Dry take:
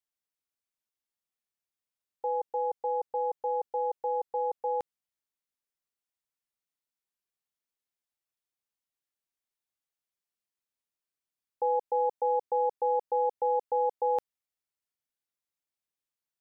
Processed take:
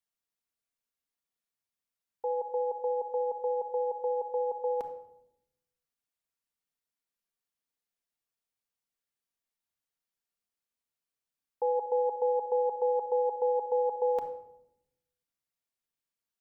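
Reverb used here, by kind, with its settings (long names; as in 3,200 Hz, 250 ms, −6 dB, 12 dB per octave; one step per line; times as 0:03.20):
rectangular room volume 2,400 cubic metres, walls furnished, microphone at 1.7 metres
level −1.5 dB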